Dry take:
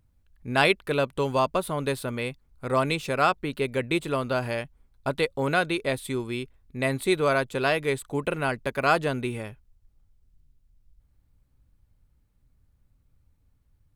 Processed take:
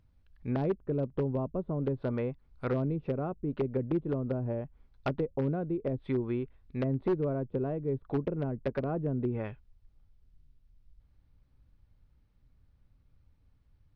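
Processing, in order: treble ducked by the level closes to 320 Hz, closed at -23.5 dBFS; wavefolder -21.5 dBFS; polynomial smoothing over 15 samples

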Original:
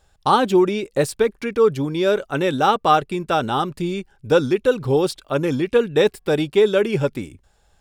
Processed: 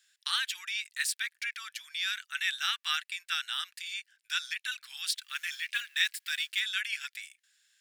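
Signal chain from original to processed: 5.1–6.6 G.711 law mismatch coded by mu; elliptic high-pass 1700 Hz, stop band 70 dB

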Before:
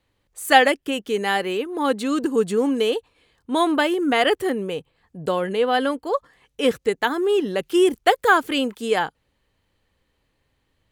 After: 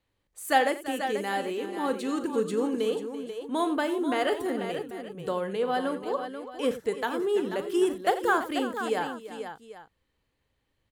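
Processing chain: dynamic EQ 2700 Hz, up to -6 dB, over -35 dBFS, Q 1.1; tapped delay 41/88/337/488/789 ms -13/-14.5/-14.5/-9/-17 dB; gain -7.5 dB

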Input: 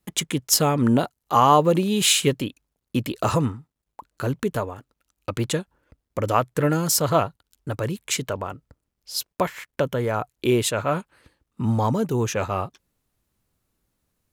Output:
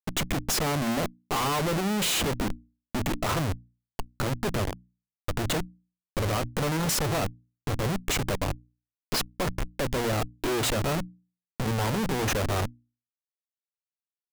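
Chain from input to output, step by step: Schmitt trigger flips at -29 dBFS; notches 60/120/180/240/300 Hz; gain -1.5 dB

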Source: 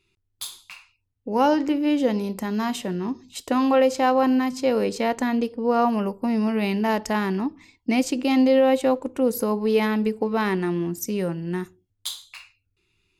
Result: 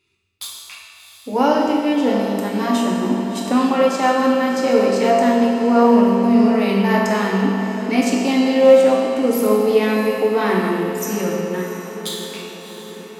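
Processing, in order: HPF 150 Hz 6 dB/oct; diffused feedback echo 0.691 s, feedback 60%, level -12 dB; reverb RT60 2.1 s, pre-delay 4 ms, DRR -3 dB; gain +1 dB

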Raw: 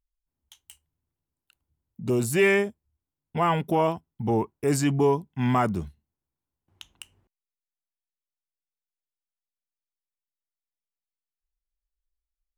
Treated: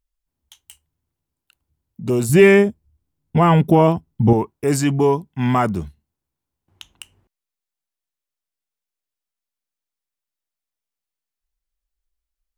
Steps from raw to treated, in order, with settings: 2.29–4.33 low shelf 380 Hz +11 dB; gain +5 dB

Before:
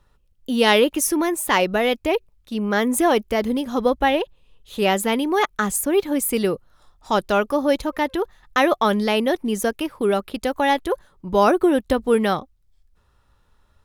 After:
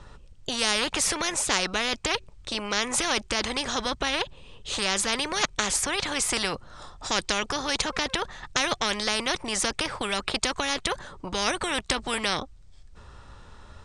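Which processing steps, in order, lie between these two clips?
Chebyshev low-pass 8700 Hz, order 5; spectral compressor 4:1; gain -3 dB

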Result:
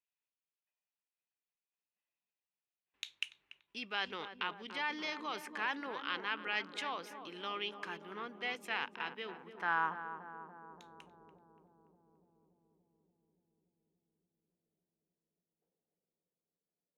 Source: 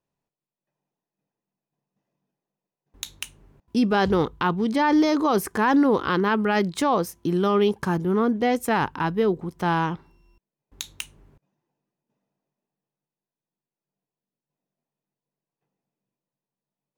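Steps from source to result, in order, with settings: band-pass sweep 2600 Hz -> 480 Hz, 9.3–10.67; darkening echo 0.288 s, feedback 82%, low-pass 990 Hz, level -8 dB; gain -2.5 dB

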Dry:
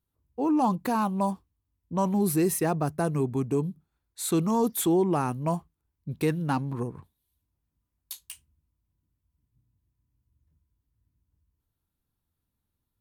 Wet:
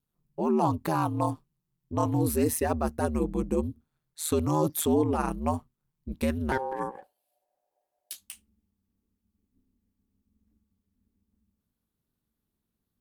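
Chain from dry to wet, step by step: ring modulator 78 Hz, from 6.52 s 660 Hz, from 8.16 s 140 Hz; gain +2 dB

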